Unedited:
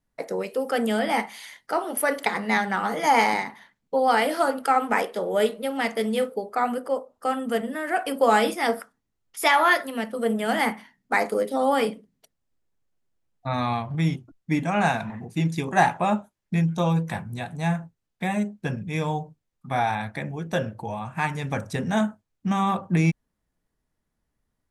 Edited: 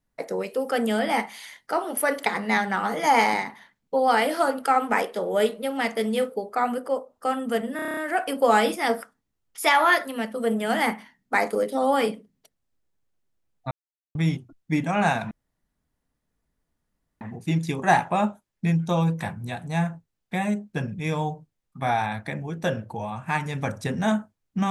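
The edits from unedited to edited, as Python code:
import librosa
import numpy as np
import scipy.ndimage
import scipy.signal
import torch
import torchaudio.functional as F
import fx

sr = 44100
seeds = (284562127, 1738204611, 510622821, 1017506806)

y = fx.edit(x, sr, fx.stutter(start_s=7.76, slice_s=0.03, count=8),
    fx.silence(start_s=13.5, length_s=0.44),
    fx.insert_room_tone(at_s=15.1, length_s=1.9), tone=tone)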